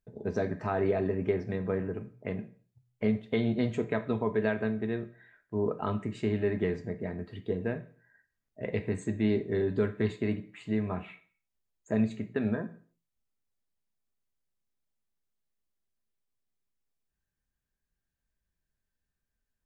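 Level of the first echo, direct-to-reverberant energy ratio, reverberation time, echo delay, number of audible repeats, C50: no echo, 8.0 dB, 0.50 s, no echo, no echo, 14.5 dB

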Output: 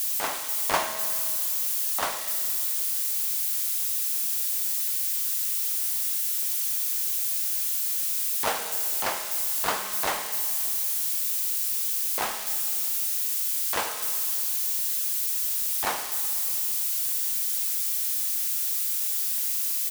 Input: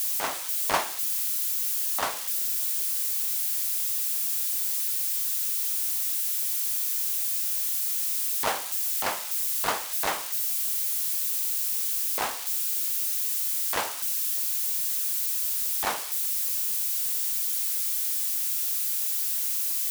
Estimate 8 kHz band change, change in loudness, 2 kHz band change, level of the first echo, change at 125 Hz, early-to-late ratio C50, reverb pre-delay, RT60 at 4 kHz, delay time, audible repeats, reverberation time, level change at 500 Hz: +0.5 dB, +0.5 dB, +1.0 dB, -15.5 dB, no reading, 8.0 dB, 5 ms, 2.3 s, 99 ms, 1, 2.5 s, +1.0 dB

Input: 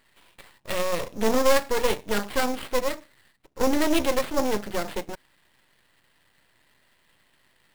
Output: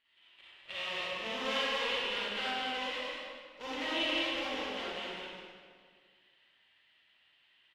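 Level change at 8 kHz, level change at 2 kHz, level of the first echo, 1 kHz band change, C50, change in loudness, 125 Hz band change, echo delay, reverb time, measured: -18.5 dB, -3.5 dB, -4.0 dB, -9.5 dB, -7.5 dB, -9.0 dB, under -15 dB, 202 ms, 1.9 s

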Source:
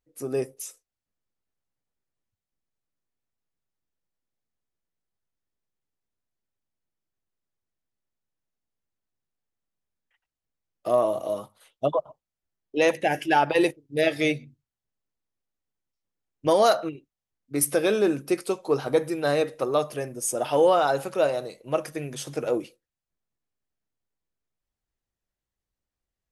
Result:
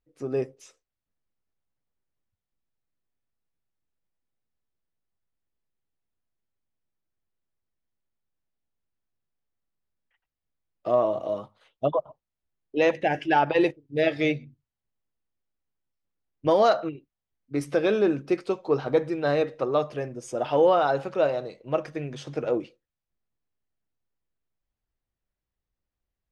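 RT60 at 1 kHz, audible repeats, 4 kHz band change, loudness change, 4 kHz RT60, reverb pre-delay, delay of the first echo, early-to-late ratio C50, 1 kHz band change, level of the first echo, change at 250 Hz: no reverb, no echo, -4.0 dB, -0.5 dB, no reverb, no reverb, no echo, no reverb, -0.5 dB, no echo, 0.0 dB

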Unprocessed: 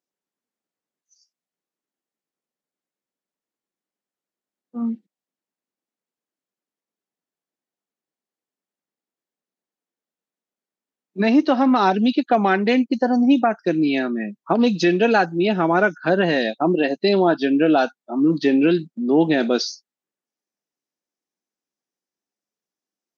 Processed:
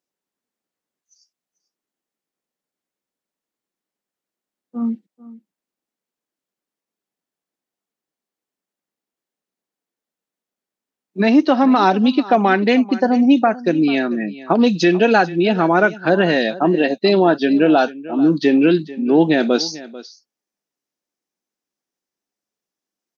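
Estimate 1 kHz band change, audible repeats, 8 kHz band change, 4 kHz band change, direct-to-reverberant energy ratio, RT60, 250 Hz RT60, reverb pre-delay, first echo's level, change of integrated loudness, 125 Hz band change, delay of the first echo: +3.0 dB, 1, no reading, +3.0 dB, no reverb, no reverb, no reverb, no reverb, -18.0 dB, +3.0 dB, +3.0 dB, 442 ms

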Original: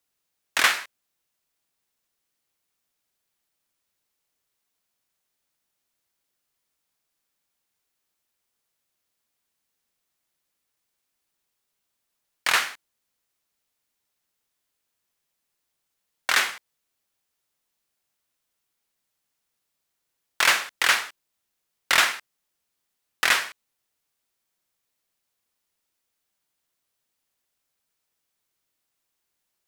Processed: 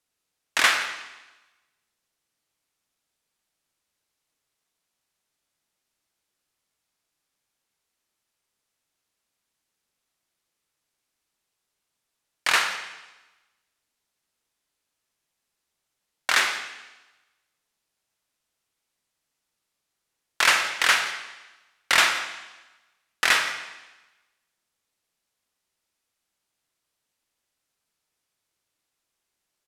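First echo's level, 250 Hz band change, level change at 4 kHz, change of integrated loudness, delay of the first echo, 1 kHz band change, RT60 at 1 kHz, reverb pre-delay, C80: -19.0 dB, +1.5 dB, +1.0 dB, 0.0 dB, 170 ms, +1.0 dB, 1.1 s, 26 ms, 9.0 dB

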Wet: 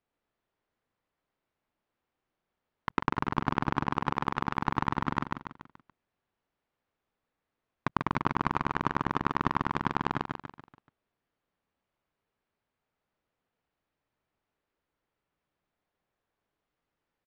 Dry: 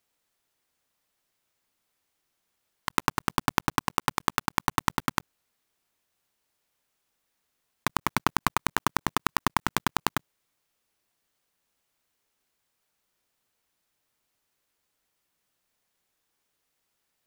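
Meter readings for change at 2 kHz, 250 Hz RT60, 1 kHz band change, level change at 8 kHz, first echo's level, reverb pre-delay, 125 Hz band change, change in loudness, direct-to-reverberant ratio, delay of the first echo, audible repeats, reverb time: -4.5 dB, no reverb, -2.0 dB, under -20 dB, -3.5 dB, no reverb, +1.5 dB, -2.5 dB, no reverb, 143 ms, 5, no reverb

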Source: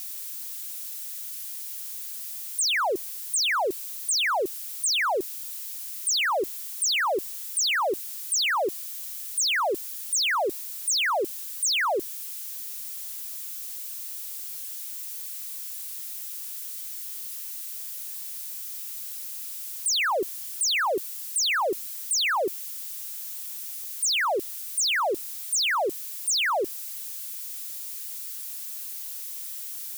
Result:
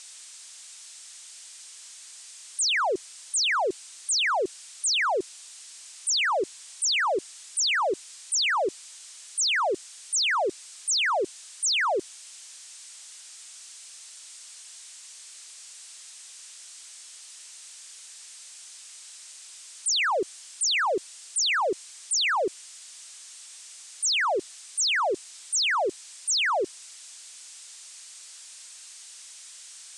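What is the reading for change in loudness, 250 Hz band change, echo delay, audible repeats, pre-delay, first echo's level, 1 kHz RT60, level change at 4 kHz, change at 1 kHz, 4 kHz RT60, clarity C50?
+2.0 dB, 0.0 dB, no echo, no echo, no reverb, no echo, no reverb, 0.0 dB, 0.0 dB, no reverb, no reverb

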